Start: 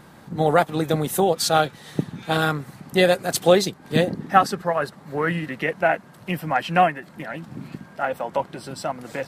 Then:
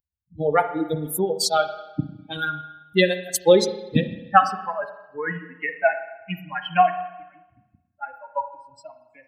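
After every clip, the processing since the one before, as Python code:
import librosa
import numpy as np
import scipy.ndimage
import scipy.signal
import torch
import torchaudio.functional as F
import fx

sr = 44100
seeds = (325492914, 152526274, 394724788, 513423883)

y = fx.bin_expand(x, sr, power=3.0)
y = fx.rev_spring(y, sr, rt60_s=1.0, pass_ms=(33, 52), chirp_ms=30, drr_db=9.0)
y = y * 10.0 ** (4.5 / 20.0)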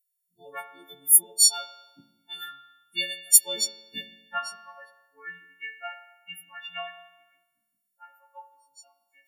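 y = fx.freq_snap(x, sr, grid_st=4)
y = np.diff(y, prepend=0.0)
y = fx.small_body(y, sr, hz=(210.0, 2900.0), ring_ms=55, db=11)
y = y * 10.0 ** (-2.5 / 20.0)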